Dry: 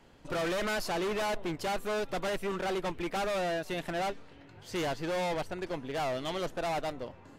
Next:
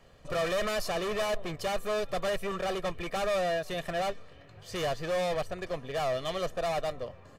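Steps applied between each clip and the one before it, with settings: comb 1.7 ms, depth 59%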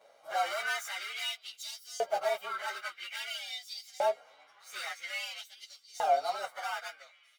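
frequency axis rescaled in octaves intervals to 110%; LFO high-pass saw up 0.5 Hz 560–6200 Hz

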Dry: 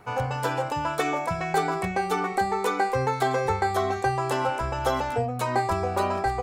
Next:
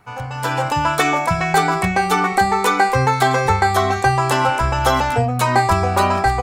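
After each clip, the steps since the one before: peaking EQ 450 Hz -7.5 dB 1.3 oct; level rider gain up to 13 dB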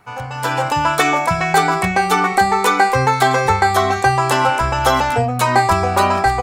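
bass shelf 170 Hz -5 dB; trim +2 dB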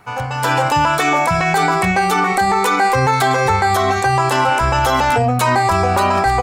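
peak limiter -11 dBFS, peak gain reduction 9.5 dB; trim +4.5 dB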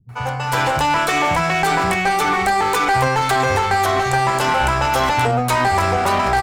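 bands offset in time lows, highs 90 ms, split 200 Hz; one-sided clip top -18.5 dBFS

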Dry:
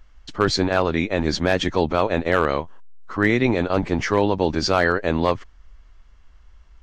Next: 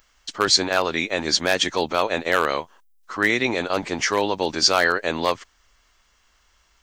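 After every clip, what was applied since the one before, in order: RIAA curve recording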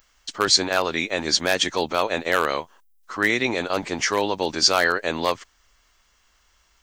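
treble shelf 8.8 kHz +5 dB; trim -1 dB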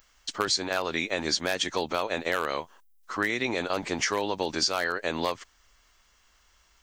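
compression, threshold -22 dBFS, peak gain reduction 10 dB; trim -1 dB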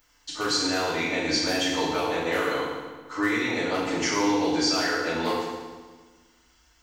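FDN reverb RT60 1.4 s, low-frequency decay 1.3×, high-frequency decay 0.85×, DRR -9 dB; trim -7.5 dB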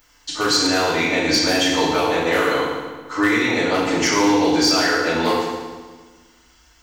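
hard clipper -17.5 dBFS, distortion -24 dB; trim +7.5 dB

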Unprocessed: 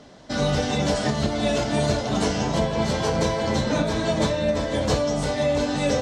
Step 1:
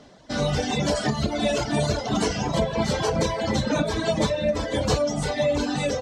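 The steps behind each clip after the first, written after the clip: in parallel at -3 dB: peak limiter -16.5 dBFS, peak gain reduction 7 dB; on the sum: reverb removal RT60 1.9 s; level rider gain up to 5.5 dB; trim -6.5 dB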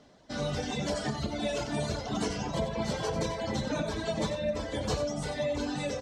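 delay 92 ms -9.5 dB; trim -8.5 dB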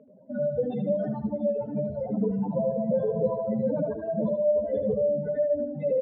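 spectral contrast enhancement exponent 3.4; cabinet simulation 190–2300 Hz, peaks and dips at 200 Hz +6 dB, 320 Hz -10 dB, 520 Hz +9 dB, 740 Hz -8 dB, 1.3 kHz -3 dB, 1.9 kHz -7 dB; feedback delay 77 ms, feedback 39%, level -7.5 dB; trim +4.5 dB

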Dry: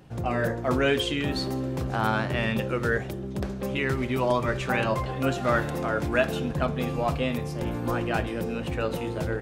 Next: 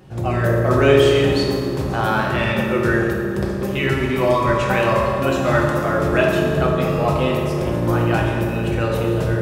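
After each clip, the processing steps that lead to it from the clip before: reverberation RT60 2.4 s, pre-delay 3 ms, DRR -2.5 dB; trim +3.5 dB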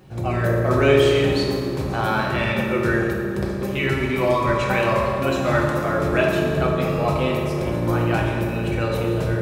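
bit crusher 11-bit; small resonant body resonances 2.3/4 kHz, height 10 dB, ringing for 45 ms; trim -2.5 dB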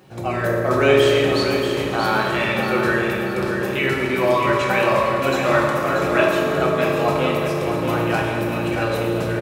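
high-pass 280 Hz 6 dB/octave; on a send: feedback delay 634 ms, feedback 43%, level -7 dB; on the sum: trim +2.5 dB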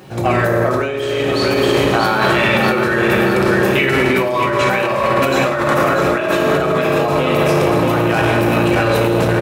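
compressor with a negative ratio -22 dBFS, ratio -1; transformer saturation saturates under 500 Hz; trim +8 dB

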